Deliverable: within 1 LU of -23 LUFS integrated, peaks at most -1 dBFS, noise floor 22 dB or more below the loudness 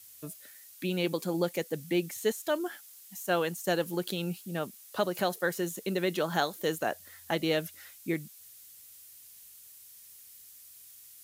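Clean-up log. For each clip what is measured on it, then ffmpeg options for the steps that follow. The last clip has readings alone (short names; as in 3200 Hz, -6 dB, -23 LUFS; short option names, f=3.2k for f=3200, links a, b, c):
noise floor -53 dBFS; noise floor target -54 dBFS; loudness -32.0 LUFS; peak -13.5 dBFS; loudness target -23.0 LUFS
-> -af "afftdn=nr=6:nf=-53"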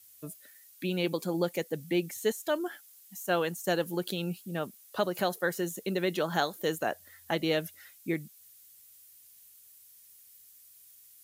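noise floor -57 dBFS; loudness -32.0 LUFS; peak -13.5 dBFS; loudness target -23.0 LUFS
-> -af "volume=9dB"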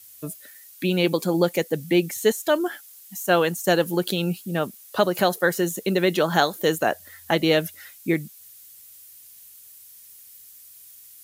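loudness -23.0 LUFS; peak -4.5 dBFS; noise floor -48 dBFS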